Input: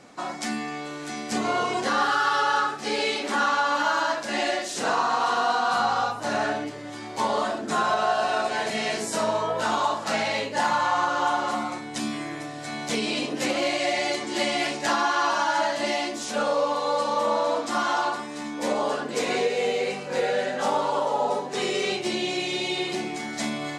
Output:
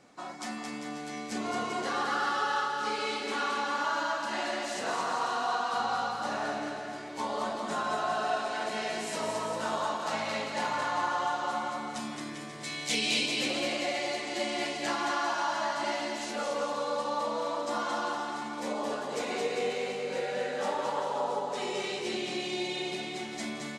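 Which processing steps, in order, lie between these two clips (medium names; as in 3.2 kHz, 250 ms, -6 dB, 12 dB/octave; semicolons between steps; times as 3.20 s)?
12.63–13.26 s: resonant high shelf 1.9 kHz +8.5 dB, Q 1.5; bouncing-ball echo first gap 220 ms, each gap 0.8×, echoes 5; trim -9 dB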